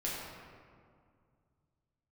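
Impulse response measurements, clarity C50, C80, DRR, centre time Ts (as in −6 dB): −1.0 dB, 0.5 dB, −7.0 dB, 113 ms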